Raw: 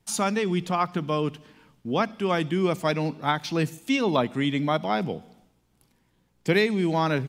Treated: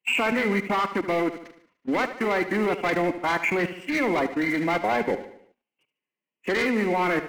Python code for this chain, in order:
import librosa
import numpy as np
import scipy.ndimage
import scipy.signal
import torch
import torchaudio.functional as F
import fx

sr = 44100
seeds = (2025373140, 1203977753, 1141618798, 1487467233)

y = fx.freq_compress(x, sr, knee_hz=1800.0, ratio=4.0)
y = scipy.signal.sosfilt(scipy.signal.butter(2, 300.0, 'highpass', fs=sr, output='sos'), y)
y = fx.rider(y, sr, range_db=10, speed_s=0.5)
y = fx.leveller(y, sr, passes=3)
y = fx.level_steps(y, sr, step_db=23)
y = fx.echo_feedback(y, sr, ms=74, feedback_pct=50, wet_db=-12.5)
y = fx.pitch_keep_formants(y, sr, semitones=2.0)